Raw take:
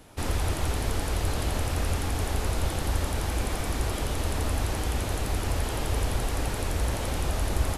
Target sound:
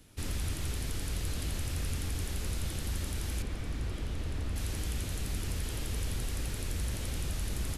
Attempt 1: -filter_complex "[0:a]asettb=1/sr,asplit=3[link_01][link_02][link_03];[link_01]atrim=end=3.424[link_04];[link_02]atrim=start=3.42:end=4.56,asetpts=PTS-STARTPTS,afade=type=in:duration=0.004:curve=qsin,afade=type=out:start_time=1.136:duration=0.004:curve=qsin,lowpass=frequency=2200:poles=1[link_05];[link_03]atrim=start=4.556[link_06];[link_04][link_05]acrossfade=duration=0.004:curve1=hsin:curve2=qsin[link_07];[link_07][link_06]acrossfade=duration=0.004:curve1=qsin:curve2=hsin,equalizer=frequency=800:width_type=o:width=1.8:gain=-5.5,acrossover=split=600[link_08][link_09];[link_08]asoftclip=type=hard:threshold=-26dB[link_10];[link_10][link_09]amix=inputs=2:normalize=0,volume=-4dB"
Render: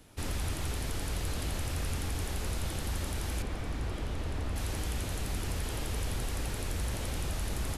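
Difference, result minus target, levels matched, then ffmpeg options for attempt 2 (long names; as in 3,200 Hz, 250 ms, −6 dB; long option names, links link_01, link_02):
1,000 Hz band +5.5 dB
-filter_complex "[0:a]asettb=1/sr,asplit=3[link_01][link_02][link_03];[link_01]atrim=end=3.424[link_04];[link_02]atrim=start=3.42:end=4.56,asetpts=PTS-STARTPTS,afade=type=in:duration=0.004:curve=qsin,afade=type=out:start_time=1.136:duration=0.004:curve=qsin,lowpass=frequency=2200:poles=1[link_05];[link_03]atrim=start=4.556[link_06];[link_04][link_05]acrossfade=duration=0.004:curve1=hsin:curve2=qsin[link_07];[link_07][link_06]acrossfade=duration=0.004:curve1=qsin:curve2=hsin,equalizer=frequency=800:width_type=o:width=1.8:gain=-13,acrossover=split=600[link_08][link_09];[link_08]asoftclip=type=hard:threshold=-26dB[link_10];[link_10][link_09]amix=inputs=2:normalize=0,volume=-4dB"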